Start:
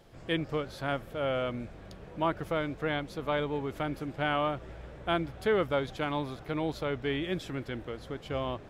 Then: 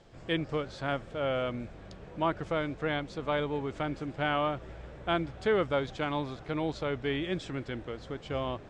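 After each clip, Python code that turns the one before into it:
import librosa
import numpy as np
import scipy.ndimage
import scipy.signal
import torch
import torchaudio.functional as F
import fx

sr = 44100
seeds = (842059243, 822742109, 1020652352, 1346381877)

y = scipy.signal.sosfilt(scipy.signal.butter(8, 8600.0, 'lowpass', fs=sr, output='sos'), x)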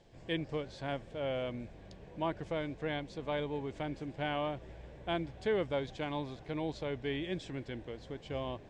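y = fx.peak_eq(x, sr, hz=1300.0, db=-12.5, octaves=0.28)
y = y * 10.0 ** (-4.5 / 20.0)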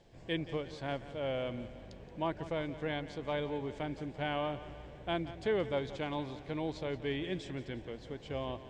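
y = fx.echo_feedback(x, sr, ms=175, feedback_pct=55, wet_db=-14.5)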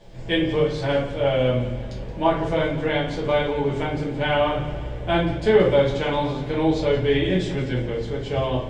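y = fx.room_shoebox(x, sr, seeds[0], volume_m3=57.0, walls='mixed', distance_m=1.4)
y = y * 10.0 ** (7.0 / 20.0)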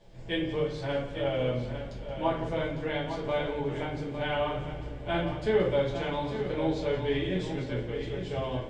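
y = x + 10.0 ** (-9.0 / 20.0) * np.pad(x, (int(853 * sr / 1000.0), 0))[:len(x)]
y = y * 10.0 ** (-9.0 / 20.0)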